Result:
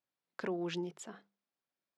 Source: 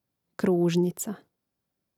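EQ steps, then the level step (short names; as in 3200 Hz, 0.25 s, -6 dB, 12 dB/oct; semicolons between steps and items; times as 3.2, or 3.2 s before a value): differentiator; tape spacing loss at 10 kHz 41 dB; notches 50/100/150/200 Hz; +14.5 dB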